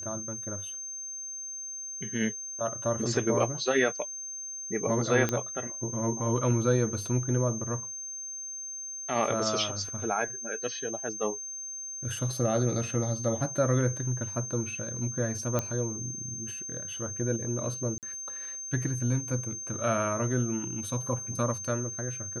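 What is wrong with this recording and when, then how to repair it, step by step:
whine 6.3 kHz -36 dBFS
5.29 s: pop -13 dBFS
15.59 s: pop -14 dBFS
17.98–18.03 s: dropout 48 ms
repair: de-click; band-stop 6.3 kHz, Q 30; interpolate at 17.98 s, 48 ms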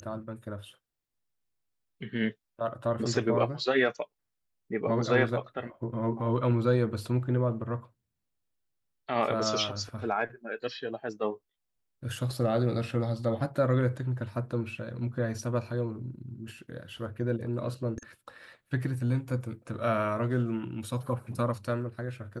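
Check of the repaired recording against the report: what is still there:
nothing left

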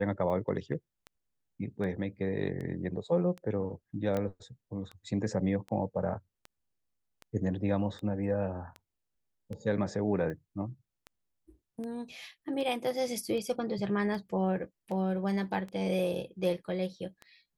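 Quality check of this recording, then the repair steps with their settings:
tick 78 rpm -29 dBFS
4.17 s: pop -20 dBFS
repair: de-click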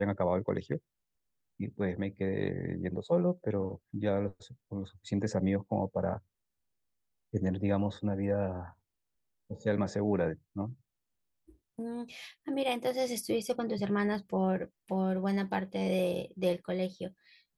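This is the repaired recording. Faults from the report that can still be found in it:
4.17 s: pop

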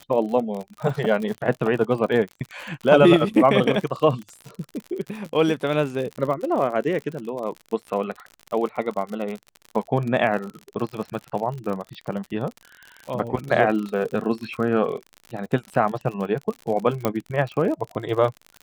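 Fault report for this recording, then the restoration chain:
crackle 55 per s -29 dBFS
17.05 s: pop -9 dBFS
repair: de-click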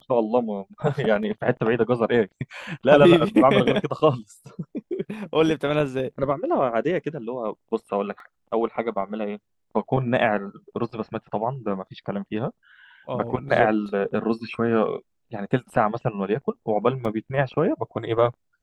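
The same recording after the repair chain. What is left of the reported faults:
17.05 s: pop

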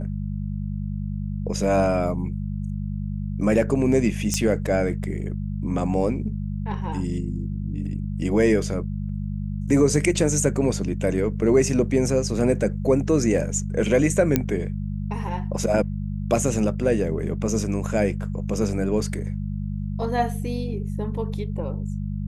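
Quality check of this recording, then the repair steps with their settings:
hum 50 Hz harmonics 4 -28 dBFS
4.34 s: pop -9 dBFS
14.36 s: pop -5 dBFS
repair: de-click; de-hum 50 Hz, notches 4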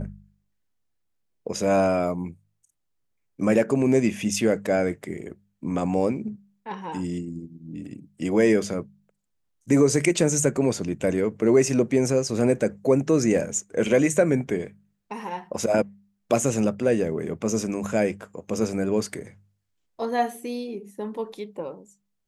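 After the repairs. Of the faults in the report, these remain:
nothing left

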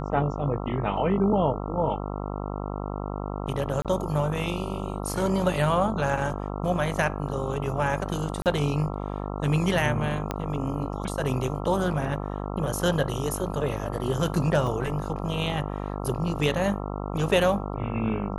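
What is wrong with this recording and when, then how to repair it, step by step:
buzz 50 Hz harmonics 27 -32 dBFS
3.82–3.85 s: dropout 27 ms
8.42–8.46 s: dropout 38 ms
10.31 s: pop -13 dBFS
14.67 s: dropout 2.9 ms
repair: de-click; de-hum 50 Hz, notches 27; interpolate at 3.82 s, 27 ms; interpolate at 8.42 s, 38 ms; interpolate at 14.67 s, 2.9 ms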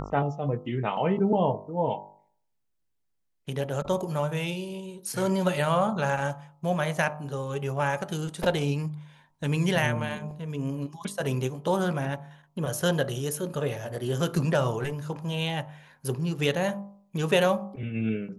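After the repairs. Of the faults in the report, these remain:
10.31 s: pop

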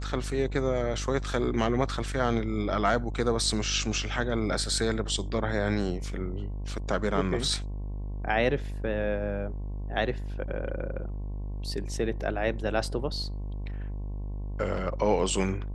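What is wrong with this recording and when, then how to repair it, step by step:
buzz 50 Hz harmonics 22 -34 dBFS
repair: de-hum 50 Hz, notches 22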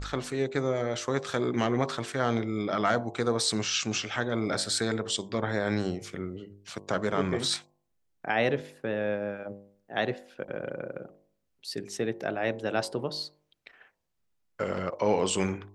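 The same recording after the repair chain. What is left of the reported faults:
nothing left

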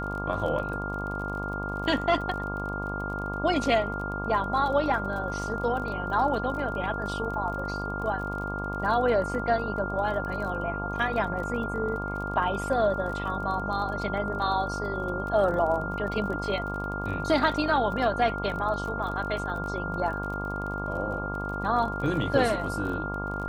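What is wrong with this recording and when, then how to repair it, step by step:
buzz 50 Hz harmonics 24 -34 dBFS
crackle 29 per s -35 dBFS
whine 1.4 kHz -33 dBFS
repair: de-click; de-hum 50 Hz, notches 24; band-stop 1.4 kHz, Q 30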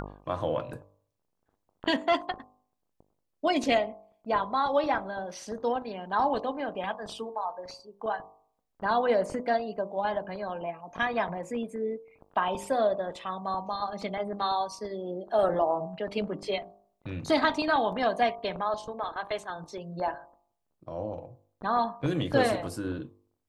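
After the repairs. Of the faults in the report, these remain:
nothing left

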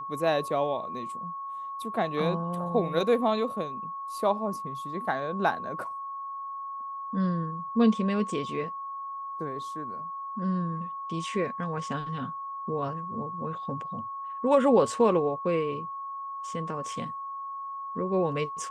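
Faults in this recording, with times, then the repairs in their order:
whine 1.1 kHz -34 dBFS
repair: band-stop 1.1 kHz, Q 30

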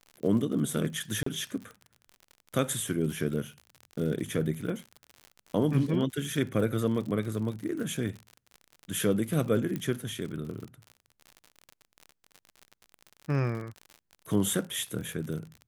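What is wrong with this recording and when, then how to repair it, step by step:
crackle 55 per s -36 dBFS
1.23–1.26 s: dropout 34 ms
9.76 s: pop -20 dBFS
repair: de-click; interpolate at 1.23 s, 34 ms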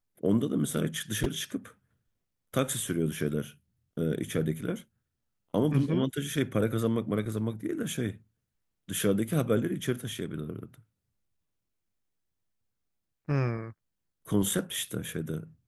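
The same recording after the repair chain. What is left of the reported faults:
nothing left

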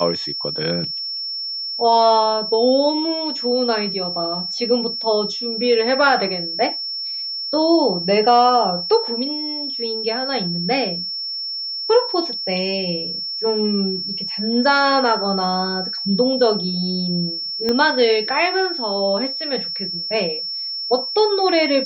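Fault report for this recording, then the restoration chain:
whine 5.4 kHz -24 dBFS
17.69 s: pop -9 dBFS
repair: de-click; band-stop 5.4 kHz, Q 30

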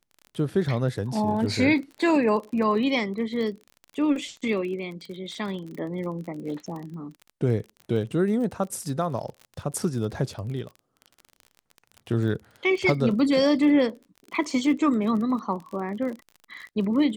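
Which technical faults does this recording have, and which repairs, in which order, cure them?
crackle 36 per s -34 dBFS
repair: de-click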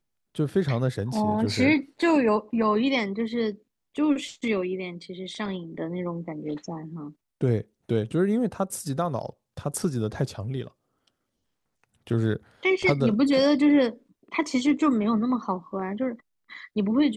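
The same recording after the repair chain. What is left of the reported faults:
nothing left

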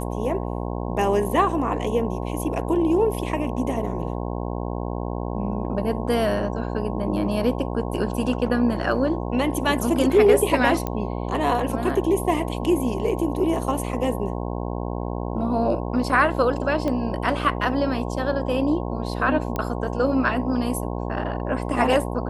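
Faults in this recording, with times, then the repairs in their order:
buzz 60 Hz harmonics 18 -28 dBFS
10.87 s: pop -12 dBFS
16.88 s: pop -15 dBFS
19.56 s: pop -13 dBFS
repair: de-click; de-hum 60 Hz, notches 18

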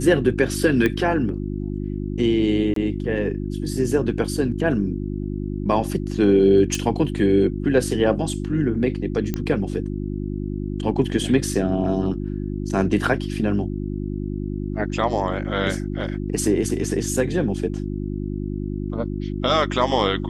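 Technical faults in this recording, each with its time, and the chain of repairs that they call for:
hum 50 Hz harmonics 7 -27 dBFS
0.86 s: pop -9 dBFS
2.74–2.76 s: dropout 23 ms
6.75 s: pop
9.34 s: pop -11 dBFS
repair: de-click; de-hum 50 Hz, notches 7; interpolate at 2.74 s, 23 ms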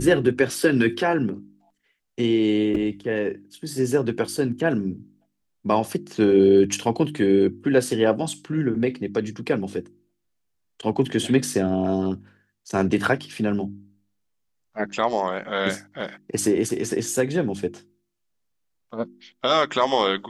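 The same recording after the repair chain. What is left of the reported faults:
nothing left

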